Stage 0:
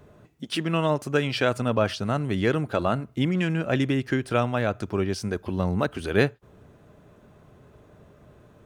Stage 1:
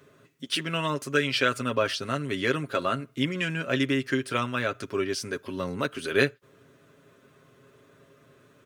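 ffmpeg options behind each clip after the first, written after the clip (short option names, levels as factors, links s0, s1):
-af "highpass=f=520:p=1,equalizer=f=780:t=o:w=0.53:g=-13.5,aecho=1:1:7.4:0.58,volume=1.26"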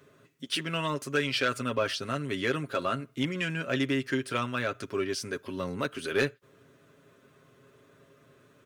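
-af "asoftclip=type=tanh:threshold=0.2,volume=0.794"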